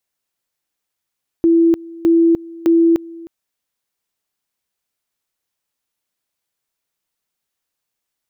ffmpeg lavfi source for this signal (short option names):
-f lavfi -i "aevalsrc='pow(10,(-8.5-22*gte(mod(t,0.61),0.3))/20)*sin(2*PI*333*t)':d=1.83:s=44100"